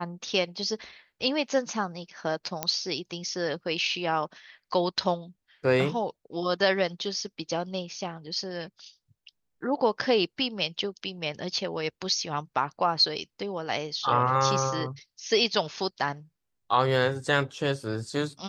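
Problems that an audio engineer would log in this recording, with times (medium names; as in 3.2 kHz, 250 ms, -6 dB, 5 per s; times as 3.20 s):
2.63 s: pop -10 dBFS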